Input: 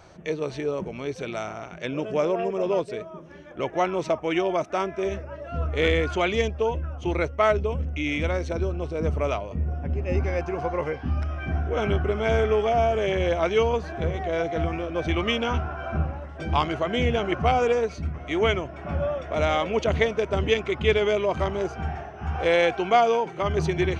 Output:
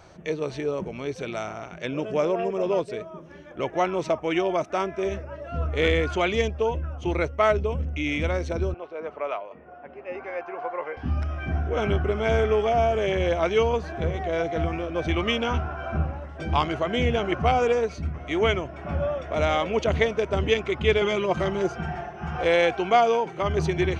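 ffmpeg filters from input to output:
-filter_complex "[0:a]asettb=1/sr,asplit=3[a][b][c];[a]atrim=end=8.744[d];[b]atrim=start=8.74:end=10.97,asetpts=PTS-STARTPTS,afade=t=in:d=0.004:c=qsin,afade=t=out:st=2.226:d=0.004:c=qsin,highpass=590,lowpass=2.2k[e];[c]atrim=start=10.966[f];[d][e]acrossfade=d=0.004:c1=hsin:c2=qsin[g];[g][f]acrossfade=d=0.004:c1=qsin:c2=hsin,asettb=1/sr,asplit=3[h][i][j];[h]atrim=end=21.014[k];[i]atrim=start=21.01:end=22.43,asetpts=PTS-STARTPTS,afade=t=in:d=0.004:c=qsin,afade=t=out:st=1.416:d=0.004:c=qsin,aecho=1:1:5.7:0.76,atrim=end_sample=62622[l];[j]atrim=start=22.426[m];[k][l]acrossfade=d=0.004:c1=hsin:c2=qsin[n];[n][m]acrossfade=d=0.004:c1=qsin:c2=hsin"

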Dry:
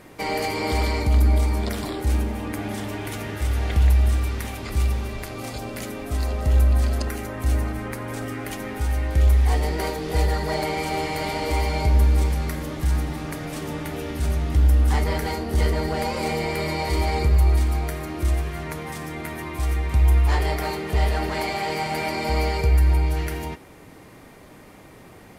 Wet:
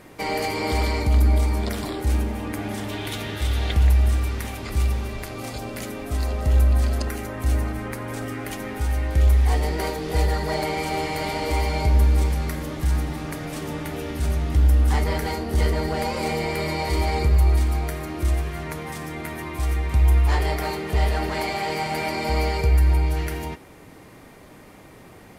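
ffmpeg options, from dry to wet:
-filter_complex "[0:a]asettb=1/sr,asplit=3[a][b][c];[a]atrim=end=2.894[d];[b]atrim=start=2.89:end=3.73,asetpts=PTS-STARTPTS,afade=t=in:d=0.004:c=qsin,afade=t=out:st=0.836:d=0.004:c=qsin,equalizer=f=3.6k:w=2.2:g=10[e];[c]atrim=start=3.726[f];[d][e]acrossfade=d=0.004:c1=hsin:c2=qsin[g];[g][f]acrossfade=d=0.004:c1=qsin:c2=hsin"

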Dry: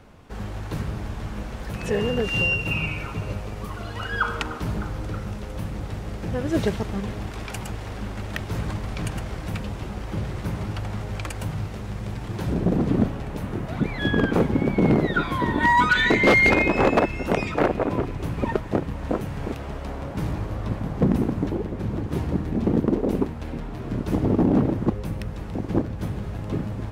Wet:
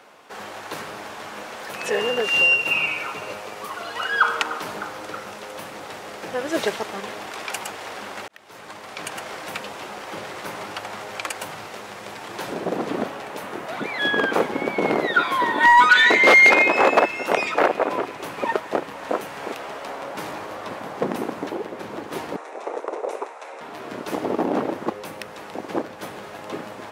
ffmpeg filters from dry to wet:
-filter_complex "[0:a]asettb=1/sr,asplit=3[a][b][c];[a]atrim=end=22.364[d];[b]atrim=start=22.36:end=23.61,asetpts=PTS-STARTPTS,afade=t=in:d=0.004:c=qsin,afade=t=out:st=1.246:d=0.004:c=qsin,highpass=f=470:w=0.5412,highpass=f=470:w=1.3066,equalizer=f=1.7k:t=q:w=4:g=-4,equalizer=f=3.1k:t=q:w=4:g=-9,equalizer=f=4.6k:t=q:w=4:g=-9,lowpass=f=9.5k:w=0.5412,lowpass=f=9.5k:w=1.3066[e];[c]atrim=start=23.606[f];[d][e]acrossfade=d=0.004:c1=hsin:c2=qsin[g];[g][f]acrossfade=d=0.004:c1=qsin:c2=hsin,asplit=2[h][i];[h]atrim=end=8.28,asetpts=PTS-STARTPTS,afade=t=out:st=8.276:d=0.004:c=hsin[j];[i]atrim=start=8.28,asetpts=PTS-STARTPTS,afade=t=in:d=1.01[k];[j][k]concat=n=2:v=0:a=1,highpass=560,acontrast=72"

